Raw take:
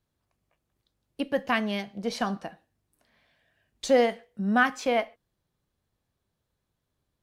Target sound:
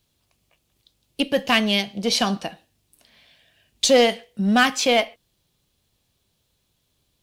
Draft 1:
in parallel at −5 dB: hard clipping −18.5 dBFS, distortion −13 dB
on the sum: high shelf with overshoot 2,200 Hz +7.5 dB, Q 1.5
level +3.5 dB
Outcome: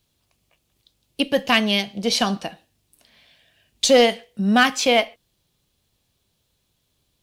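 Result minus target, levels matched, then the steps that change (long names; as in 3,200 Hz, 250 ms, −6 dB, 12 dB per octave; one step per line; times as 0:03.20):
hard clipping: distortion −7 dB
change: hard clipping −25 dBFS, distortion −7 dB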